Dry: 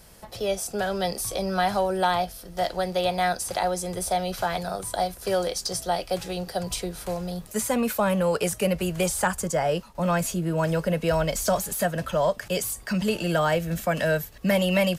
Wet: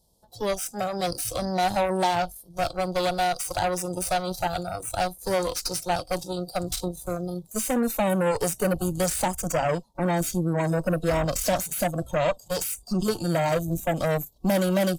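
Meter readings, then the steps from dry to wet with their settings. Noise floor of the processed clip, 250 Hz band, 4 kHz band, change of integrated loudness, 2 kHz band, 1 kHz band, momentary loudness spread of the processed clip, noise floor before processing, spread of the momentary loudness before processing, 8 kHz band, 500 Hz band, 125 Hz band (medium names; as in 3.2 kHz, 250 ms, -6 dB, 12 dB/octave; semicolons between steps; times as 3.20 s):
-54 dBFS, +0.5 dB, -1.5 dB, -0.5 dB, -2.5 dB, 0.0 dB, 6 LU, -46 dBFS, 6 LU, 0.0 dB, -1.0 dB, +0.5 dB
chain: Chebyshev band-stop 930–3600 Hz, order 3; Chebyshev shaper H 8 -16 dB, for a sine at -12 dBFS; spectral noise reduction 15 dB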